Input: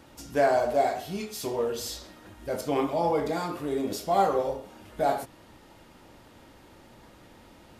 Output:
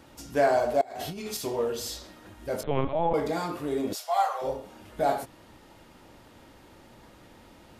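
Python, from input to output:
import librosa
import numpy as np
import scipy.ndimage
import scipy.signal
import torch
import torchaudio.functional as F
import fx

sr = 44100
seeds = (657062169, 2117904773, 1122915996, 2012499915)

y = fx.over_compress(x, sr, threshold_db=-38.0, ratio=-1.0, at=(0.81, 1.37))
y = fx.lpc_vocoder(y, sr, seeds[0], excitation='pitch_kept', order=10, at=(2.63, 3.14))
y = fx.steep_highpass(y, sr, hz=670.0, slope=36, at=(3.93, 4.41), fade=0.02)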